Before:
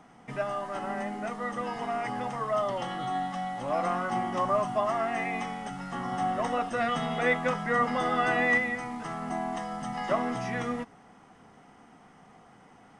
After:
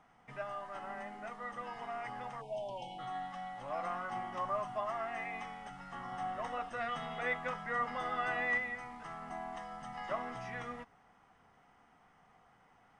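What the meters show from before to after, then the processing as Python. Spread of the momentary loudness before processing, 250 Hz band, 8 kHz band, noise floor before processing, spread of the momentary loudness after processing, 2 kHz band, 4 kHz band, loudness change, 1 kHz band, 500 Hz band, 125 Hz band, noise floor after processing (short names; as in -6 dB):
9 LU, -16.0 dB, under -10 dB, -56 dBFS, 10 LU, -8.0 dB, -10.0 dB, -9.5 dB, -9.0 dB, -11.5 dB, -13.0 dB, -67 dBFS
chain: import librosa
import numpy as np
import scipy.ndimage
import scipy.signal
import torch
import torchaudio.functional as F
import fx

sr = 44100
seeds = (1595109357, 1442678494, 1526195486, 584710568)

y = fx.peak_eq(x, sr, hz=260.0, db=-12.0, octaves=2.5)
y = fx.spec_erase(y, sr, start_s=2.41, length_s=0.58, low_hz=1000.0, high_hz=2200.0)
y = fx.high_shelf(y, sr, hz=3700.0, db=-11.5)
y = F.gain(torch.from_numpy(y), -4.5).numpy()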